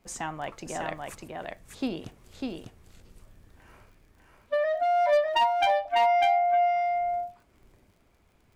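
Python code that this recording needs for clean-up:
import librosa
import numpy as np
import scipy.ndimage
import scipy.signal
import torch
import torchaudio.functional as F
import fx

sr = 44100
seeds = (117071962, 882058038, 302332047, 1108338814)

y = fx.fix_declip(x, sr, threshold_db=-16.5)
y = fx.fix_declick_ar(y, sr, threshold=6.5)
y = fx.fix_echo_inverse(y, sr, delay_ms=599, level_db=-3.5)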